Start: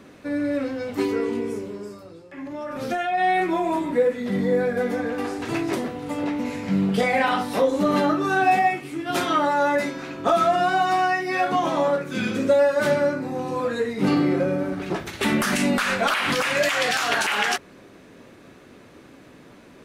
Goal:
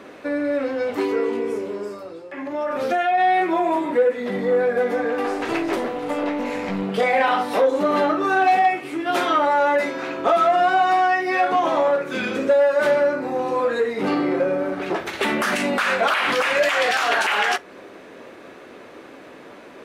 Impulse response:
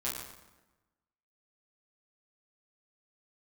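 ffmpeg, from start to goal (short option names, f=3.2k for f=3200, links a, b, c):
-filter_complex "[0:a]asplit=2[a][b];[b]acompressor=threshold=-29dB:ratio=6,volume=3dB[c];[a][c]amix=inputs=2:normalize=0,asettb=1/sr,asplit=3[d][e][f];[d]atrim=end=5.264[g];[e]atrim=start=5.26:end=6.83,asetpts=PTS-STARTPTS,afade=t=in:d=0.004:c=qsin,afade=t=out:st=1.566:d=0.004:c=qsin,aeval=exprs='0.376*(cos(1*acos(clip(val(0)/0.376,-1,1)))-cos(1*PI/2))+0.0596*(cos(4*acos(clip(val(0)/0.376,-1,1)))-cos(4*PI/2))':c=same[h];[f]atrim=start=6.826[i];[g][h]acrossfade=d=0.004:c1=hsin:c2=qsin[j];[j][i]acrossfade=d=0.004:c1=qsin:c2=hsin,asettb=1/sr,asplit=3[k][l][m];[k]atrim=end=8.154[n];[l]atrim=start=8.15:end=8.66,asetpts=PTS-STARTPTS,afade=t=in:d=0.004:c=qsin,afade=t=out:st=0.506:d=0.004:c=qsin,aeval=exprs='0.299*(abs(mod(val(0)/0.299+3,4)-2)-1)':c=same[o];[m]atrim=start=8.656[p];[n][o]acrossfade=d=0.004:c1=hsin:c2=qsin[q];[q][p]acrossfade=d=0.004:c1=qsin:c2=hsin,equalizer=f=520:t=o:w=1.8:g=2.5,acontrast=65,bass=f=250:g=-14,treble=f=4k:g=-7,asplit=2[r][s];[1:a]atrim=start_sample=2205,atrim=end_sample=3528[t];[s][t]afir=irnorm=-1:irlink=0,volume=-23.5dB[u];[r][u]amix=inputs=2:normalize=0,volume=-7dB"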